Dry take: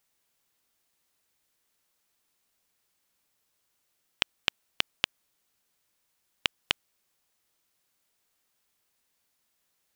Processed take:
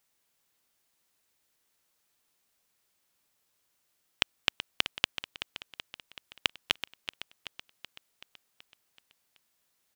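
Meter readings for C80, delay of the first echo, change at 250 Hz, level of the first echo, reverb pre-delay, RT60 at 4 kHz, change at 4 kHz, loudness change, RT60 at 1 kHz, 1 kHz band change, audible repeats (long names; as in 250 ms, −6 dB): no reverb audible, 379 ms, +0.5 dB, −11.0 dB, no reverb audible, no reverb audible, +0.5 dB, −1.5 dB, no reverb audible, +0.5 dB, 6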